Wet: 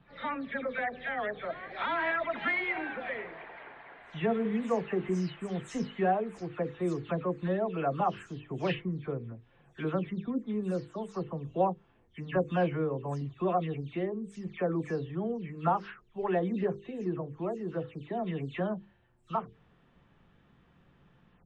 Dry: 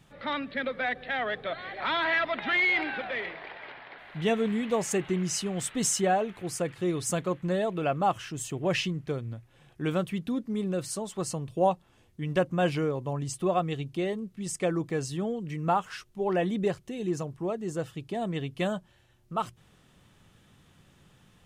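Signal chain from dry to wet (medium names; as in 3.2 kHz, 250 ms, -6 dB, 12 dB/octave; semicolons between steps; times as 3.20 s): delay that grows with frequency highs early, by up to 203 ms; low-pass 2.1 kHz 12 dB/octave; hum notches 50/100/150/200/250/300/350/400/450/500 Hz; trim -1.5 dB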